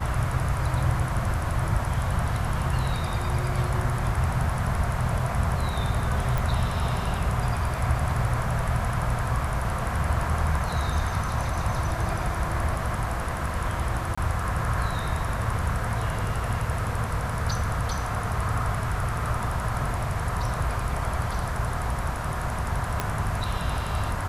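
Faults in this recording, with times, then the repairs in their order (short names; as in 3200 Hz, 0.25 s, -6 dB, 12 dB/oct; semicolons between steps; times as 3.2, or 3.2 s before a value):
6.38 pop
14.15–14.18 gap 25 ms
23 pop -10 dBFS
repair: de-click; interpolate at 14.15, 25 ms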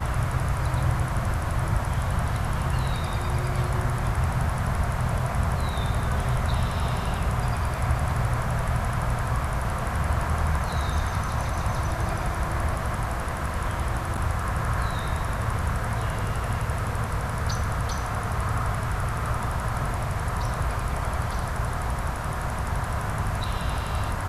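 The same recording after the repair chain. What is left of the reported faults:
23 pop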